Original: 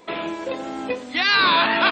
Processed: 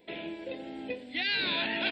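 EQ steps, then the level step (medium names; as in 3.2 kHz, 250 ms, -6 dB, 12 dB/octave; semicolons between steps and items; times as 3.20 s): static phaser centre 2.8 kHz, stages 4; -8.5 dB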